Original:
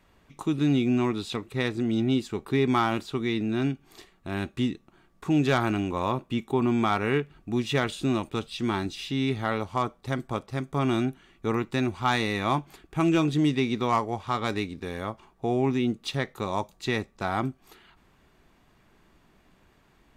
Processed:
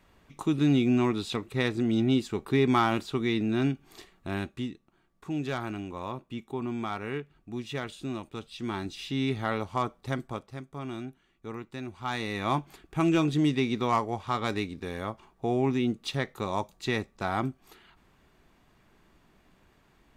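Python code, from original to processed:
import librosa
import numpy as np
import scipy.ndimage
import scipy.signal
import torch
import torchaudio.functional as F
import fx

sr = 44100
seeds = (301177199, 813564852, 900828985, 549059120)

y = fx.gain(x, sr, db=fx.line((4.3, 0.0), (4.71, -9.0), (8.33, -9.0), (9.17, -2.0), (10.14, -2.0), (10.72, -12.0), (11.83, -12.0), (12.56, -1.5)))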